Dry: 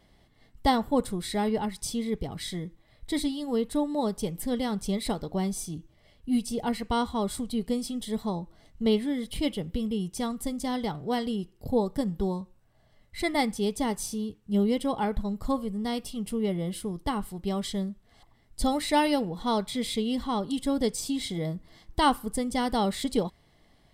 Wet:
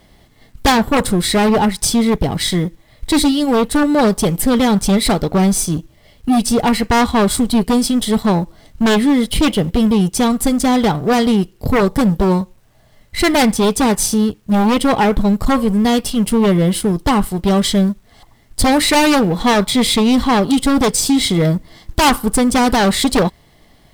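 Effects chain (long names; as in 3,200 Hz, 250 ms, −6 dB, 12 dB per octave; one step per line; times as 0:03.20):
mu-law and A-law mismatch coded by A
in parallel at −11 dB: sine wavefolder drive 16 dB, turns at −11 dBFS
on the sum: level +9 dB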